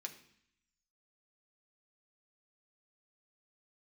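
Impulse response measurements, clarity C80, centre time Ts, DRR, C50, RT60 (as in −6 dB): 14.5 dB, 12 ms, 2.5 dB, 11.5 dB, 0.65 s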